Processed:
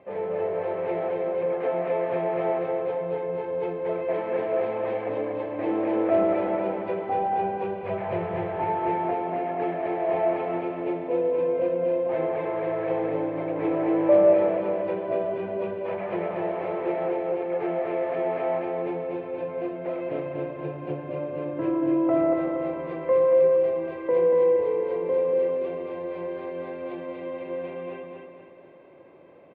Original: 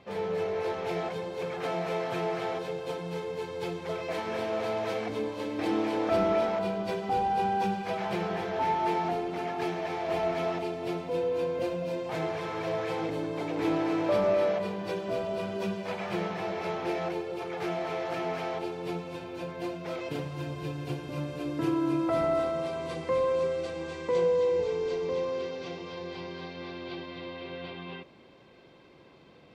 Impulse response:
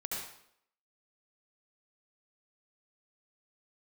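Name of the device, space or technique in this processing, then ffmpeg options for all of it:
bass cabinet: -filter_complex "[0:a]highpass=70,equalizer=frequency=72:width_type=q:width=4:gain=-8,equalizer=frequency=130:width_type=q:width=4:gain=-7,equalizer=frequency=210:width_type=q:width=4:gain=-4,equalizer=frequency=350:width_type=q:width=4:gain=3,equalizer=frequency=570:width_type=q:width=4:gain=10,equalizer=frequency=1400:width_type=q:width=4:gain=-5,lowpass=frequency=2300:width=0.5412,lowpass=frequency=2300:width=1.3066,asettb=1/sr,asplit=3[link_01][link_02][link_03];[link_01]atrim=end=7.834[link_04];[link_02]atrim=start=7.83:end=8.65,asetpts=PTS-STARTPTS,afade=type=in:duration=0.004:curve=qsin,afade=type=out:start_time=0.816:duration=0.004:curve=qsin,lowshelf=frequency=160:width_type=q:width=1.5:gain=10.5[link_05];[link_03]atrim=start=8.646[link_06];[link_04][link_05]acrossfade=duration=0.004:curve1=hsin:curve2=qsin[link_07];[link_07][link_06]acrossfade=duration=0.004:curve1=qsin:curve2=hsin,aecho=1:1:237|474|711|948|1185|1422:0.631|0.29|0.134|0.0614|0.0283|0.013"

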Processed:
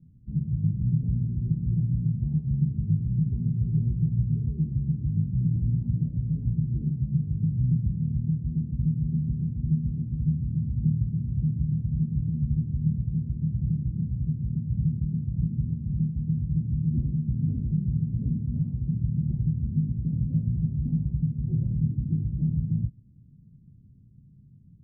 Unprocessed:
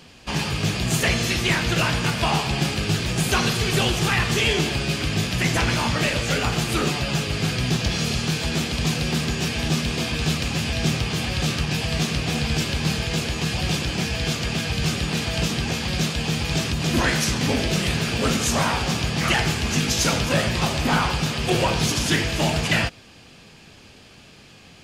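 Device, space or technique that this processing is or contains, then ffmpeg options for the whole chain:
the neighbour's flat through the wall: -af "lowpass=frequency=200:width=0.5412,lowpass=frequency=200:width=1.3066,equalizer=frequency=130:width_type=o:width=0.68:gain=7,volume=-3.5dB"

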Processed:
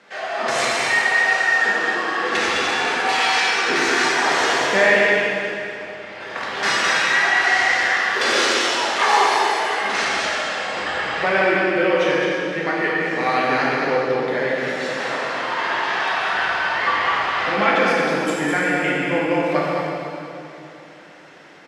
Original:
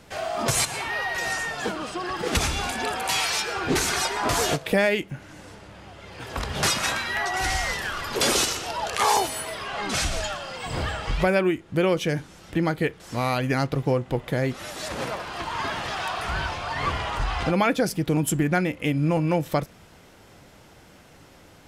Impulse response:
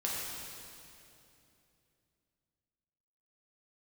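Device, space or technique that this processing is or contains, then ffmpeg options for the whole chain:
station announcement: -filter_complex "[0:a]highpass=340,lowpass=4900,equalizer=frequency=1800:width_type=o:width=0.6:gain=7,aecho=1:1:87.46|209.9:0.251|0.562[link_01];[1:a]atrim=start_sample=2205[link_02];[link_01][link_02]afir=irnorm=-1:irlink=0"

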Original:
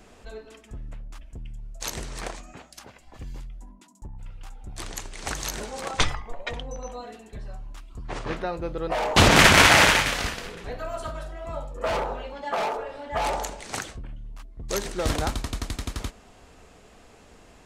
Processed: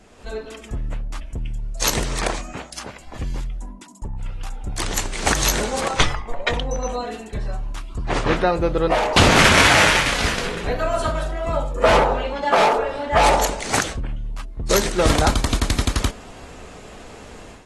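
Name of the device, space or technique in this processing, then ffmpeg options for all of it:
low-bitrate web radio: -af "dynaudnorm=framelen=170:gausssize=3:maxgain=11dB,alimiter=limit=-4.5dB:level=0:latency=1:release=177" -ar 32000 -c:a aac -b:a 32k

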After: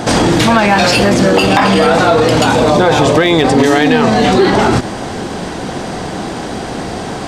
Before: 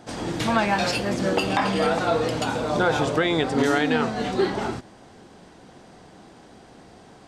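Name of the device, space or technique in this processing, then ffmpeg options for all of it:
loud club master: -filter_complex "[0:a]asettb=1/sr,asplit=3[link_01][link_02][link_03];[link_01]atrim=end=2.524[link_04];[link_02]atrim=start=2.52:end=4.26,asetpts=PTS-STARTPTS,afade=type=in:duration=0.004:curve=qsin,afade=type=out:start_time=1.736:duration=0.004:curve=qsin,bandreject=frequency=1400:width=6.7[link_05];[link_03]atrim=start=4.256[link_06];[link_04][link_05]acrossfade=duration=0.004:curve1=hsin:curve2=qsin[link_07];[link_07][link_06]acrossfade=duration=0.004:curve1=qsin:curve2=hsin,acompressor=threshold=-25dB:ratio=2.5,asoftclip=type=hard:threshold=-19dB,alimiter=level_in=28dB:limit=-1dB:release=50:level=0:latency=1,volume=-1.5dB"

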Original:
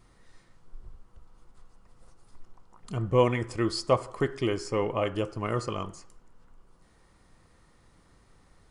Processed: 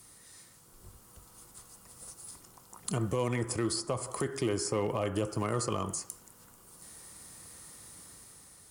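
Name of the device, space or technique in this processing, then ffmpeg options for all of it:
FM broadcast chain: -filter_complex "[0:a]highpass=75,dynaudnorm=framelen=170:gausssize=9:maxgain=5dB,acrossover=split=210|1700[link_01][link_02][link_03];[link_01]acompressor=threshold=-32dB:ratio=4[link_04];[link_02]acompressor=threshold=-26dB:ratio=4[link_05];[link_03]acompressor=threshold=-50dB:ratio=4[link_06];[link_04][link_05][link_06]amix=inputs=3:normalize=0,aemphasis=mode=production:type=50fm,alimiter=limit=-21dB:level=0:latency=1:release=46,asoftclip=type=hard:threshold=-22dB,lowpass=frequency=15000:width=0.5412,lowpass=frequency=15000:width=1.3066,aemphasis=mode=production:type=50fm"

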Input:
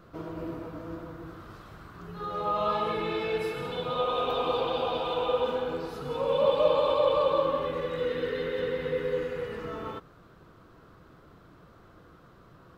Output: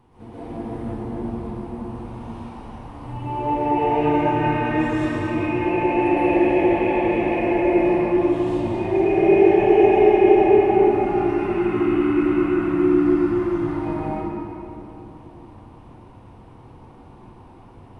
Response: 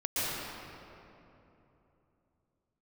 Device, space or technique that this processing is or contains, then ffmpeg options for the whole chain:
slowed and reverbed: -filter_complex "[0:a]asetrate=31311,aresample=44100[link_01];[1:a]atrim=start_sample=2205[link_02];[link_01][link_02]afir=irnorm=-1:irlink=0,volume=-1dB"

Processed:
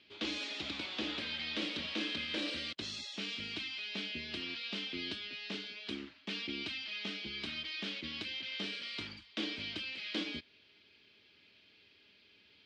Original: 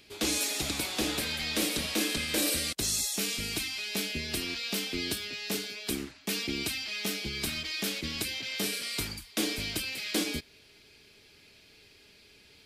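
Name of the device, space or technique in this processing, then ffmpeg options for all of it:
guitar cabinet: -af "highpass=110,equalizer=frequency=140:width_type=q:width=4:gain=-8,equalizer=frequency=440:width_type=q:width=4:gain=-5,equalizer=frequency=750:width_type=q:width=4:gain=-5,equalizer=frequency=3100:width_type=q:width=4:gain=5,lowpass=frequency=4300:width=0.5412,lowpass=frequency=4300:width=1.3066,volume=-6.5dB"

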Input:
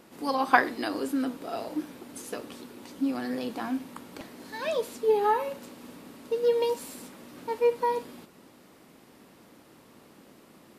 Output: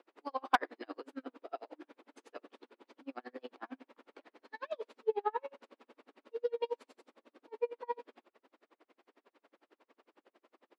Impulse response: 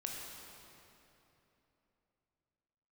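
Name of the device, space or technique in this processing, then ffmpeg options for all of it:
helicopter radio: -filter_complex "[0:a]highpass=frequency=280:width=0.5412,highpass=frequency=280:width=1.3066,highpass=310,lowpass=2900,aeval=exprs='val(0)*pow(10,-39*(0.5-0.5*cos(2*PI*11*n/s))/20)':channel_layout=same,asoftclip=type=hard:threshold=-11.5dB,asettb=1/sr,asplit=3[link_01][link_02][link_03];[link_01]atrim=end=6.864[link_04];[link_02]atrim=start=6.86:end=7.74,asetpts=PTS-STARTPTS,afade=type=in:duration=0.004:curve=qsin,afade=type=out:start_time=0.876:duration=0.004:curve=qsin,equalizer=frequency=1800:width_type=o:width=2:gain=-4[link_05];[link_03]atrim=start=7.736[link_06];[link_04][link_05]acrossfade=duration=0.004:curve1=hsin:curve2=qsin[link_07];[link_07][link_06]acrossfade=duration=0.004:curve1=qsin:curve2=hsin,volume=-3.5dB"

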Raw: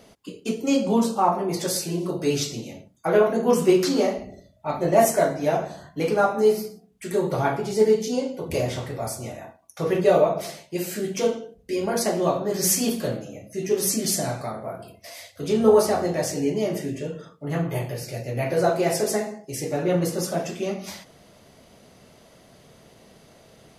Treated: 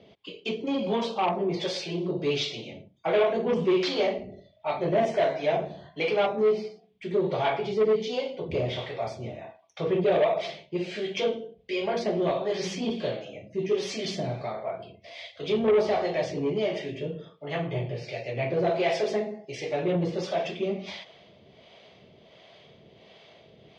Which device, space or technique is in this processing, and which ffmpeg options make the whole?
guitar amplifier with harmonic tremolo: -filter_complex "[0:a]acrossover=split=480[link_01][link_02];[link_01]aeval=exprs='val(0)*(1-0.7/2+0.7/2*cos(2*PI*1.4*n/s))':channel_layout=same[link_03];[link_02]aeval=exprs='val(0)*(1-0.7/2-0.7/2*cos(2*PI*1.4*n/s))':channel_layout=same[link_04];[link_03][link_04]amix=inputs=2:normalize=0,asoftclip=type=tanh:threshold=-20dB,highpass=82,equalizer=frequency=260:width_type=q:width=4:gain=-5,equalizer=frequency=400:width_type=q:width=4:gain=4,equalizer=frequency=640:width_type=q:width=4:gain=4,equalizer=frequency=1400:width_type=q:width=4:gain=-5,equalizer=frequency=2300:width_type=q:width=4:gain=7,equalizer=frequency=3300:width_type=q:width=4:gain=10,lowpass=frequency=4600:width=0.5412,lowpass=frequency=4600:width=1.3066"

